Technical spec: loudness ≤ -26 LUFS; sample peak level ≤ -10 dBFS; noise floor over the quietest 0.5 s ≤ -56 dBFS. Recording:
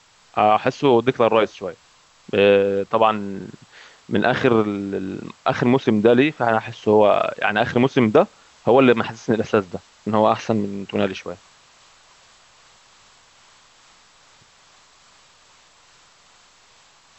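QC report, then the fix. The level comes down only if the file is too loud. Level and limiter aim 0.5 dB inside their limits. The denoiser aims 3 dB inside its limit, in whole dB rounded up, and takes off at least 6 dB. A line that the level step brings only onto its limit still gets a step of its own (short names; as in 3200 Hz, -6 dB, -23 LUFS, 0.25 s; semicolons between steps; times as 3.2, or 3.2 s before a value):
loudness -19.0 LUFS: fail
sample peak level -3.5 dBFS: fail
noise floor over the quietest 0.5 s -54 dBFS: fail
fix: gain -7.5 dB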